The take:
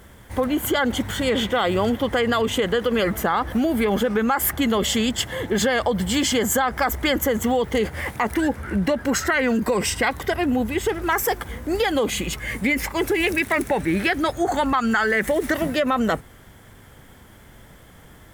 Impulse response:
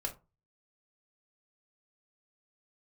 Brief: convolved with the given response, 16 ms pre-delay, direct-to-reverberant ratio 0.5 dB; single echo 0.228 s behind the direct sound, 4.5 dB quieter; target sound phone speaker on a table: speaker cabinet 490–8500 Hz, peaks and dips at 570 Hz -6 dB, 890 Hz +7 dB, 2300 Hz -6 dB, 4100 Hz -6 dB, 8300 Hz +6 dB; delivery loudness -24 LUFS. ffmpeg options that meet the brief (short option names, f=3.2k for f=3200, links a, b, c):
-filter_complex "[0:a]aecho=1:1:228:0.596,asplit=2[a][b];[1:a]atrim=start_sample=2205,adelay=16[c];[b][c]afir=irnorm=-1:irlink=0,volume=-2dB[d];[a][d]amix=inputs=2:normalize=0,highpass=f=490:w=0.5412,highpass=f=490:w=1.3066,equalizer=f=570:t=q:w=4:g=-6,equalizer=f=890:t=q:w=4:g=7,equalizer=f=2.3k:t=q:w=4:g=-6,equalizer=f=4.1k:t=q:w=4:g=-6,equalizer=f=8.3k:t=q:w=4:g=6,lowpass=f=8.5k:w=0.5412,lowpass=f=8.5k:w=1.3066,volume=-3.5dB"